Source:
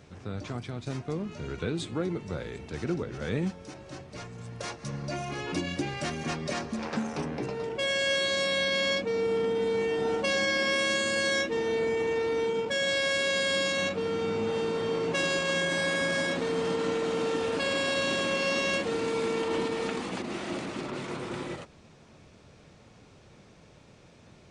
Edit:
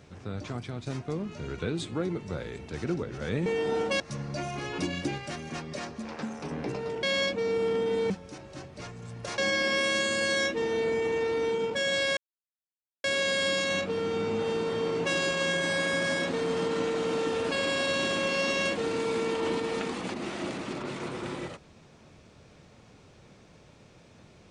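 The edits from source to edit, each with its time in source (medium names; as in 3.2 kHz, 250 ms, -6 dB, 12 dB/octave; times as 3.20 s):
3.46–4.74 s: swap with 9.79–10.33 s
5.92–7.25 s: gain -4.5 dB
7.77–8.72 s: delete
13.12 s: insert silence 0.87 s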